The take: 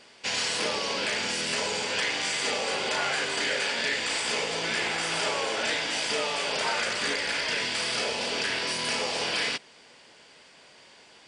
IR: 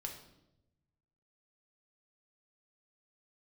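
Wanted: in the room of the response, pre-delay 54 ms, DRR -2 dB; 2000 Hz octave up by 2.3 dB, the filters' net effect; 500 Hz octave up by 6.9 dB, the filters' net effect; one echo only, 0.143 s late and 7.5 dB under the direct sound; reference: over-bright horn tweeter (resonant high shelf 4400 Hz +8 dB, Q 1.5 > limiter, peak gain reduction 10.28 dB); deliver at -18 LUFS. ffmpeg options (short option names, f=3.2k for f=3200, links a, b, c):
-filter_complex "[0:a]equalizer=f=500:t=o:g=8,equalizer=f=2k:t=o:g=4,aecho=1:1:143:0.422,asplit=2[a][b];[1:a]atrim=start_sample=2205,adelay=54[c];[b][c]afir=irnorm=-1:irlink=0,volume=4dB[d];[a][d]amix=inputs=2:normalize=0,highshelf=f=4.4k:t=q:w=1.5:g=8,volume=5.5dB,alimiter=limit=-10.5dB:level=0:latency=1"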